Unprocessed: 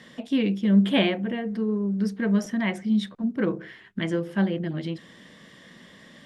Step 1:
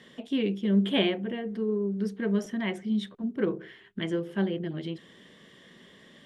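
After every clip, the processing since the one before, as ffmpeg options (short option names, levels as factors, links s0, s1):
-af "equalizer=f=400:t=o:w=0.33:g=9,equalizer=f=3150:t=o:w=0.33:g=5,equalizer=f=5000:t=o:w=0.33:g=-3,volume=0.531"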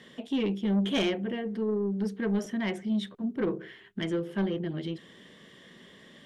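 -af "asoftclip=type=tanh:threshold=0.0794,volume=1.12"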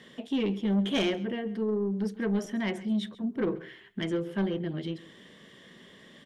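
-af "aecho=1:1:135:0.112"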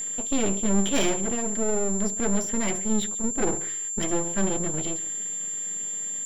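-af "aeval=exprs='max(val(0),0)':c=same,aeval=exprs='val(0)+0.0158*sin(2*PI*7300*n/s)':c=same,volume=2.37"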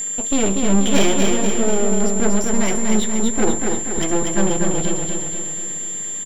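-af "aecho=1:1:241|482|723|964|1205|1446|1687:0.631|0.341|0.184|0.0994|0.0537|0.029|0.0156,volume=2"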